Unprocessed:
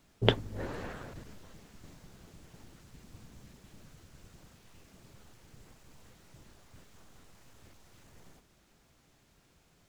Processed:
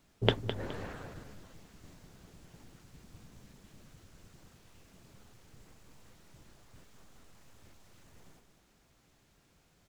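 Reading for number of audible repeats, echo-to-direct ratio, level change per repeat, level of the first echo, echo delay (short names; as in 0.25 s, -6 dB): 2, -9.5 dB, -10.5 dB, -10.0 dB, 0.209 s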